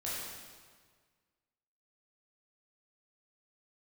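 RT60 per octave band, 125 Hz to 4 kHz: 1.9, 1.7, 1.7, 1.6, 1.5, 1.4 seconds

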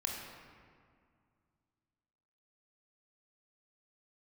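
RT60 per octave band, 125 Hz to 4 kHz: 2.9, 2.7, 2.1, 2.1, 1.7, 1.2 seconds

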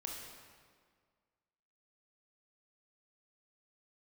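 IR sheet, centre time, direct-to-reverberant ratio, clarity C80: 79 ms, −0.5 dB, 3.5 dB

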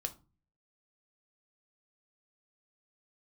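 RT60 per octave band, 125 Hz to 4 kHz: 0.65, 0.55, 0.35, 0.30, 0.25, 0.20 seconds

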